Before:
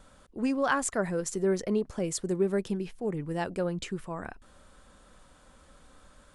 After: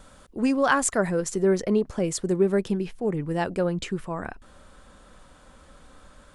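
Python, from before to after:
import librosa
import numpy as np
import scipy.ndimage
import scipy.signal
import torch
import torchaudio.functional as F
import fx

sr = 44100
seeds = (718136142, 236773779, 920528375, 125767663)

y = fx.high_shelf(x, sr, hz=5300.0, db=fx.steps((0.0, 2.0), (1.09, -4.0)))
y = y * 10.0 ** (5.5 / 20.0)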